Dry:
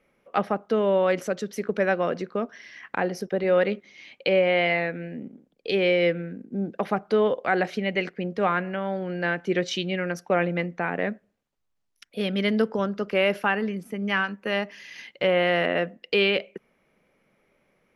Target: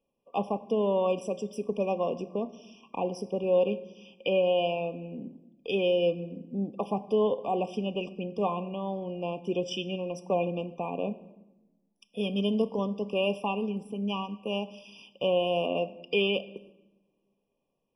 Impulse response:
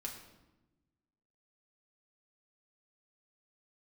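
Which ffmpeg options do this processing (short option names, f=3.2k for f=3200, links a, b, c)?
-filter_complex "[0:a]agate=range=-9dB:threshold=-53dB:ratio=16:detection=peak,asplit=2[a][b];[1:a]atrim=start_sample=2205[c];[b][c]afir=irnorm=-1:irlink=0,volume=-5.5dB[d];[a][d]amix=inputs=2:normalize=0,afftfilt=real='re*eq(mod(floor(b*sr/1024/1200),2),0)':imag='im*eq(mod(floor(b*sr/1024/1200),2),0)':win_size=1024:overlap=0.75,volume=-6.5dB"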